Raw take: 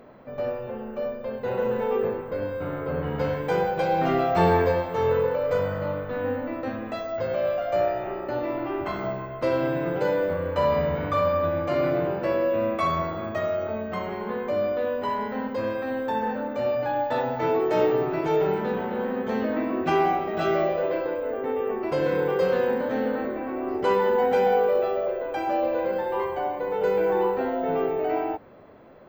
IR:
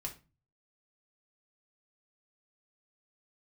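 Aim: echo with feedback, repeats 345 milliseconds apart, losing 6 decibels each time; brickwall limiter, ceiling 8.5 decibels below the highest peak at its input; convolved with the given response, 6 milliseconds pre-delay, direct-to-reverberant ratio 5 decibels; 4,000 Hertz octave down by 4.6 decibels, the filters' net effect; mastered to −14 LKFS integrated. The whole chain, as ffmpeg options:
-filter_complex "[0:a]equalizer=frequency=4000:width_type=o:gain=-6.5,alimiter=limit=-18dB:level=0:latency=1,aecho=1:1:345|690|1035|1380|1725|2070:0.501|0.251|0.125|0.0626|0.0313|0.0157,asplit=2[link_01][link_02];[1:a]atrim=start_sample=2205,adelay=6[link_03];[link_02][link_03]afir=irnorm=-1:irlink=0,volume=-4dB[link_04];[link_01][link_04]amix=inputs=2:normalize=0,volume=11.5dB"

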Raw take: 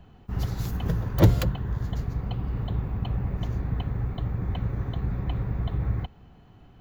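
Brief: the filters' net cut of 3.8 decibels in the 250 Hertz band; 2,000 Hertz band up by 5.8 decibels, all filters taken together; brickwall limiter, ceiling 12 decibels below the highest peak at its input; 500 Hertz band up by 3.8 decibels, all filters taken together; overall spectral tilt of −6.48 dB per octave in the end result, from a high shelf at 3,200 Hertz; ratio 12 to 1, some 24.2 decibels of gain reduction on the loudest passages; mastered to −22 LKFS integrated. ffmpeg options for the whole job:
ffmpeg -i in.wav -af "equalizer=frequency=250:width_type=o:gain=-9,equalizer=frequency=500:width_type=o:gain=7,equalizer=frequency=2000:width_type=o:gain=8,highshelf=frequency=3200:gain=-3.5,acompressor=threshold=-37dB:ratio=12,volume=27dB,alimiter=limit=-12.5dB:level=0:latency=1" out.wav

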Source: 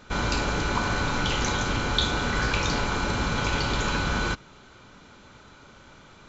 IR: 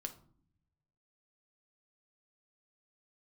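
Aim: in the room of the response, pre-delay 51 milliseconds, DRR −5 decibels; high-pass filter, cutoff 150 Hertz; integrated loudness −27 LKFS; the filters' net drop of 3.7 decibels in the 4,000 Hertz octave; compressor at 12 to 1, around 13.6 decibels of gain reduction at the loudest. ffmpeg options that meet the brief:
-filter_complex "[0:a]highpass=150,equalizer=frequency=4000:width_type=o:gain=-4.5,acompressor=threshold=-36dB:ratio=12,asplit=2[link_01][link_02];[1:a]atrim=start_sample=2205,adelay=51[link_03];[link_02][link_03]afir=irnorm=-1:irlink=0,volume=7.5dB[link_04];[link_01][link_04]amix=inputs=2:normalize=0,volume=5.5dB"

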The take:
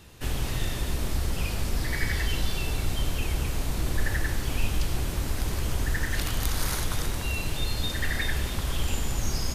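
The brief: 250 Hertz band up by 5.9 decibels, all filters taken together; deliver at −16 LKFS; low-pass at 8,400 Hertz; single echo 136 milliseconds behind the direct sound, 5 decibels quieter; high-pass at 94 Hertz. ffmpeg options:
ffmpeg -i in.wav -af "highpass=94,lowpass=8400,equalizer=frequency=250:width_type=o:gain=8,aecho=1:1:136:0.562,volume=14dB" out.wav

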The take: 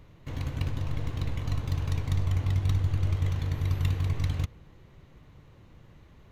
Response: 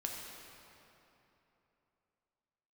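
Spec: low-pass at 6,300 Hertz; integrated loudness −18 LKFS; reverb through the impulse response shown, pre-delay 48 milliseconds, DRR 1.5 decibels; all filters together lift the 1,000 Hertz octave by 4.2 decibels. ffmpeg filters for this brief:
-filter_complex "[0:a]lowpass=6300,equalizer=frequency=1000:width_type=o:gain=5,asplit=2[link_01][link_02];[1:a]atrim=start_sample=2205,adelay=48[link_03];[link_02][link_03]afir=irnorm=-1:irlink=0,volume=-2.5dB[link_04];[link_01][link_04]amix=inputs=2:normalize=0,volume=11.5dB"

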